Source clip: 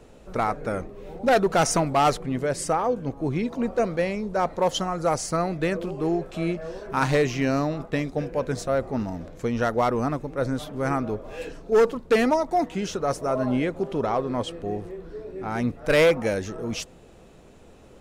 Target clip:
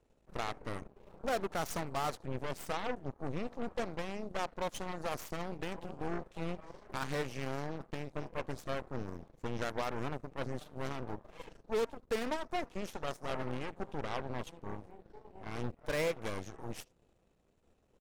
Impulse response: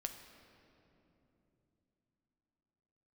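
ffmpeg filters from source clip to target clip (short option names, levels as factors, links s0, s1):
-af "lowshelf=f=140:g=3.5,aecho=1:1:76:0.0708,aeval=exprs='0.266*(cos(1*acos(clip(val(0)/0.266,-1,1)))-cos(1*PI/2))+0.075*(cos(3*acos(clip(val(0)/0.266,-1,1)))-cos(3*PI/2))+0.0237*(cos(8*acos(clip(val(0)/0.266,-1,1)))-cos(8*PI/2))':c=same,alimiter=limit=0.141:level=0:latency=1:release=169,volume=0.447"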